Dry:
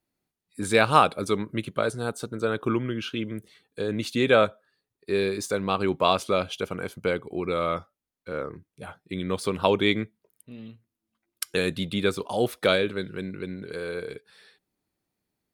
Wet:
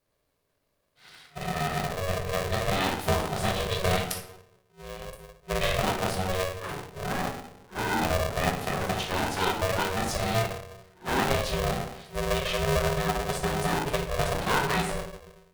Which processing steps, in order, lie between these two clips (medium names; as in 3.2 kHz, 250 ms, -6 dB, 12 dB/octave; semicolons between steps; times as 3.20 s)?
reverse the whole clip; dynamic bell 120 Hz, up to +6 dB, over -47 dBFS, Q 3.1; compression 4:1, threshold -29 dBFS, peak gain reduction 15 dB; reverberation RT60 0.70 s, pre-delay 3 ms, DRR -3 dB; polarity switched at an audio rate 280 Hz